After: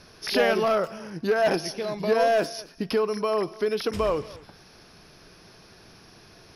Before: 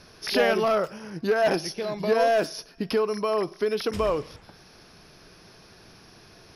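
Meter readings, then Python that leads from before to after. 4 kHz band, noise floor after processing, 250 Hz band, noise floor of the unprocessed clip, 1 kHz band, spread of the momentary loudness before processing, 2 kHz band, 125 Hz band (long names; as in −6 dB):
0.0 dB, −52 dBFS, 0.0 dB, −52 dBFS, 0.0 dB, 11 LU, 0.0 dB, 0.0 dB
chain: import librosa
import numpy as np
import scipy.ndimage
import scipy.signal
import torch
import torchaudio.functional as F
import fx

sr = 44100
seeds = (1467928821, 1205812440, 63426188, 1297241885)

y = x + 10.0 ** (-21.0 / 20.0) * np.pad(x, (int(227 * sr / 1000.0), 0))[:len(x)]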